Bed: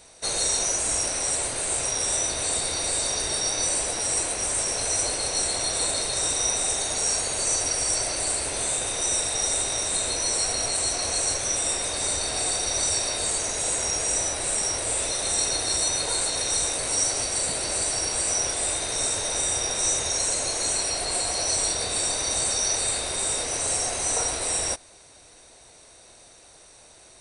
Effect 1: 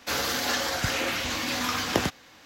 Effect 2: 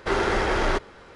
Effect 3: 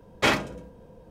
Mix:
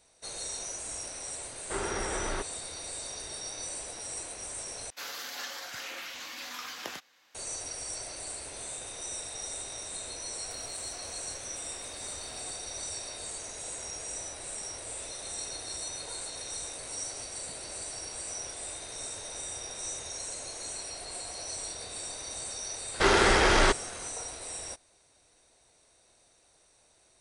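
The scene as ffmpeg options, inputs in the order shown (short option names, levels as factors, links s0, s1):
-filter_complex "[2:a]asplit=2[s0][s1];[1:a]asplit=2[s2][s3];[0:a]volume=0.211[s4];[s2]highpass=f=1000:p=1[s5];[s3]acompressor=threshold=0.00891:ratio=12:attack=8.7:release=159:knee=1:detection=peak[s6];[s1]highshelf=f=2800:g=11[s7];[s4]asplit=2[s8][s9];[s8]atrim=end=4.904[s10];[s5]atrim=end=2.45,asetpts=PTS-STARTPTS,volume=0.299[s11];[s9]atrim=start=7.346[s12];[s0]atrim=end=1.15,asetpts=PTS-STARTPTS,volume=0.282,afade=t=in:d=0.004:c=hsin,afade=t=out:st=1.146:d=0.004:c=hsin,adelay=1640[s13];[s6]atrim=end=2.45,asetpts=PTS-STARTPTS,volume=0.237,afade=t=in:d=0.004:c=hsin,afade=t=out:st=2.446:d=0.004:c=hsin,adelay=10440[s14];[s7]atrim=end=1.15,asetpts=PTS-STARTPTS,volume=0.944,afade=t=in:d=0.004:c=hsin,afade=t=out:st=1.146:d=0.004:c=hsin,adelay=22940[s15];[s10][s11]acrossfade=d=0.004:c1=hsin:c2=hsin[s16];[s16][s12]acrossfade=d=0.004:c1=hsin:c2=hsin[s17];[s17][s13][s14][s15]amix=inputs=4:normalize=0"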